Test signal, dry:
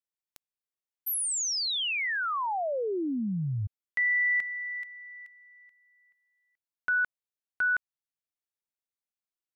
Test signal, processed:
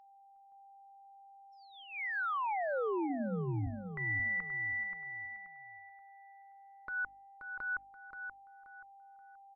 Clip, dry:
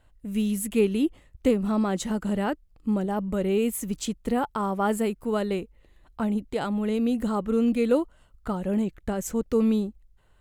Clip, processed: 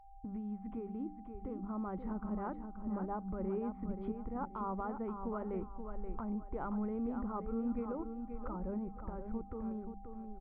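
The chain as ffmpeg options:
-af "anlmdn=0.158,bandreject=f=50:t=h:w=6,bandreject=f=100:t=h:w=6,bandreject=f=150:t=h:w=6,bandreject=f=200:t=h:w=6,bandreject=f=250:t=h:w=6,bandreject=f=300:t=h:w=6,asubboost=boost=5:cutoff=64,lowpass=f=1.4k:w=0.5412,lowpass=f=1.4k:w=1.3066,lowshelf=f=100:g=-3,aecho=1:1:0.9:0.37,acompressor=threshold=-37dB:ratio=16:attack=6.4:release=507:knee=1:detection=rms,alimiter=level_in=12.5dB:limit=-24dB:level=0:latency=1:release=133,volume=-12.5dB,dynaudnorm=f=380:g=9:m=4dB,aeval=exprs='val(0)+0.00112*sin(2*PI*790*n/s)':c=same,aecho=1:1:529|1058|1587|2116:0.422|0.122|0.0355|0.0103,volume=2dB" -ar 12000 -c:a libmp3lame -b:a 40k

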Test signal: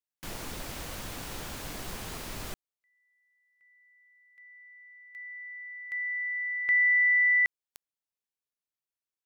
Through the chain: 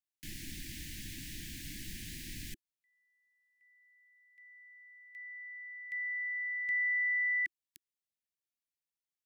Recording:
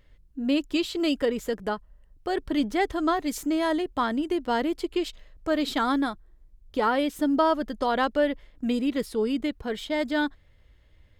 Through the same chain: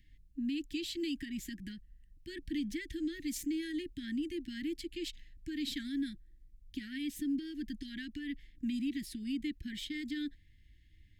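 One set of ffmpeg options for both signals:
-af "acompressor=threshold=-25dB:ratio=6:attack=0.27:release=164:knee=6:detection=peak,asuperstop=centerf=760:order=20:qfactor=0.57,volume=-4dB"

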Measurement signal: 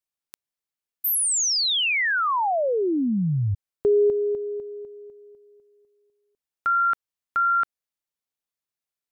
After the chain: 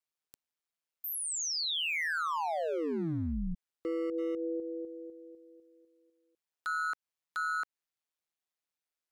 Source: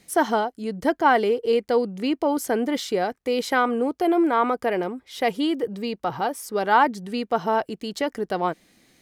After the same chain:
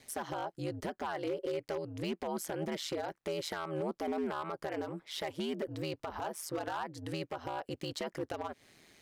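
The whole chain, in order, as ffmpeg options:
-af "lowshelf=f=240:g=-8.5,acompressor=threshold=-29dB:ratio=20:attack=0.55:release=292:knee=6:detection=peak,highshelf=f=7.5k:g=-6,aeval=exprs='0.0335*(abs(mod(val(0)/0.0335+3,4)-2)-1)':c=same,aeval=exprs='val(0)*sin(2*PI*80*n/s)':c=same,volume=2.5dB"

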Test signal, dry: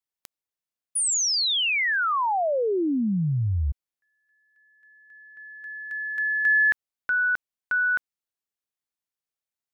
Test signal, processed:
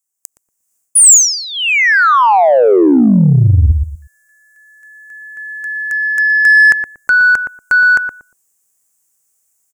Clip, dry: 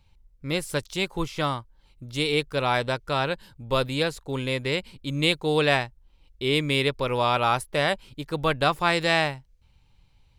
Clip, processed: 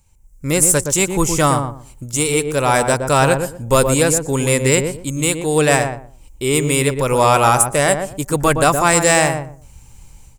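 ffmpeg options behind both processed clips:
-filter_complex "[0:a]highshelf=f=5.4k:t=q:w=3:g=12,dynaudnorm=f=190:g=3:m=14dB,asplit=2[a][b];[b]adelay=118,lowpass=f=830:p=1,volume=-5dB,asplit=2[c][d];[d]adelay=118,lowpass=f=830:p=1,volume=0.24,asplit=2[e][f];[f]adelay=118,lowpass=f=830:p=1,volume=0.24[g];[a][c][e][g]amix=inputs=4:normalize=0,asplit=2[h][i];[i]acontrast=42,volume=-1dB[j];[h][j]amix=inputs=2:normalize=0,volume=-6.5dB"

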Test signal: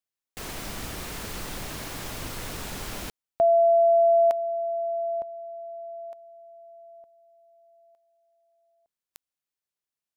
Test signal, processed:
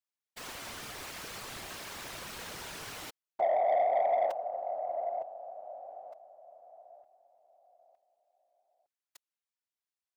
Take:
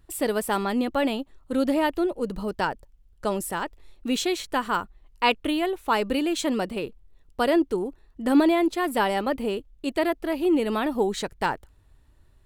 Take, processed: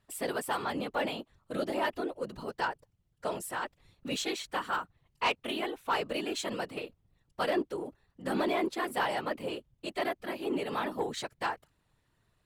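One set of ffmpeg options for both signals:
-filter_complex "[0:a]afftfilt=real='hypot(re,im)*cos(2*PI*random(0))':imag='hypot(re,im)*sin(2*PI*random(1))':win_size=512:overlap=0.75,asplit=2[a][b];[b]highpass=f=720:p=1,volume=13dB,asoftclip=type=tanh:threshold=-12dB[c];[a][c]amix=inputs=2:normalize=0,lowpass=f=7.1k:p=1,volume=-6dB,volume=-6dB"

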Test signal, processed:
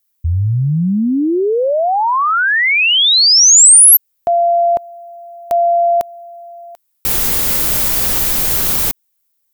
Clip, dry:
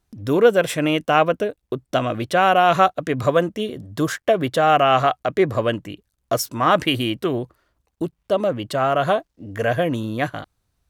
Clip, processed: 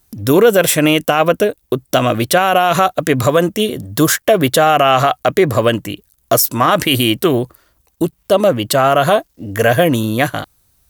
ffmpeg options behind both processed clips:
-af "aemphasis=mode=production:type=50fm,alimiter=level_in=10dB:limit=-1dB:release=50:level=0:latency=1,volume=-1dB"

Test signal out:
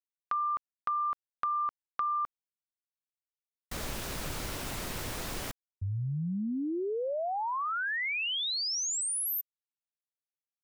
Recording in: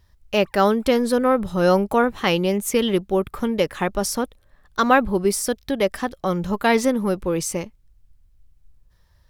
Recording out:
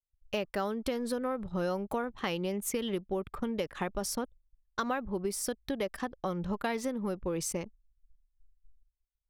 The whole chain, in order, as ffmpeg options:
-af "anlmdn=2.51,acompressor=threshold=-23dB:ratio=6,agate=range=-33dB:threshold=-47dB:ratio=3:detection=peak,volume=-6.5dB"

